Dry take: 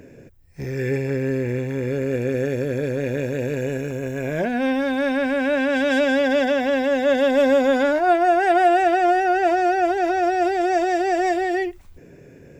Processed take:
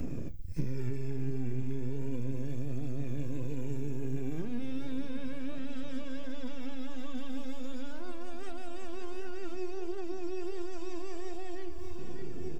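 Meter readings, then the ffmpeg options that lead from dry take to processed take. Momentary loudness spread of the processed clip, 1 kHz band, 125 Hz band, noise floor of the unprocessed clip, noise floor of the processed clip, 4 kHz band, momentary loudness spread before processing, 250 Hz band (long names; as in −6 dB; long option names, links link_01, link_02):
7 LU, −31.0 dB, −8.5 dB, −46 dBFS, −29 dBFS, −18.5 dB, 8 LU, −15.0 dB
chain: -filter_complex "[0:a]acrossover=split=140|3000[link_01][link_02][link_03];[link_02]acompressor=threshold=-27dB:ratio=5[link_04];[link_01][link_04][link_03]amix=inputs=3:normalize=0,acrossover=split=1900[link_05][link_06];[link_05]aeval=exprs='max(val(0),0)':channel_layout=same[link_07];[link_06]alimiter=level_in=8dB:limit=-24dB:level=0:latency=1,volume=-8dB[link_08];[link_07][link_08]amix=inputs=2:normalize=0,aecho=1:1:596|1192|1788|2384|2980|3576:0.224|0.13|0.0753|0.0437|0.0253|0.0147,flanger=delay=1.5:depth=1.1:regen=44:speed=0.35:shape=triangular,equalizer=frequency=1900:width=2.4:gain=-6.5,bandreject=frequency=810:width=19,acompressor=threshold=-49dB:ratio=6,lowshelf=frequency=410:width_type=q:width=1.5:gain=11.5,flanger=delay=3.8:depth=9.8:regen=70:speed=1.4:shape=sinusoidal,volume=12.5dB"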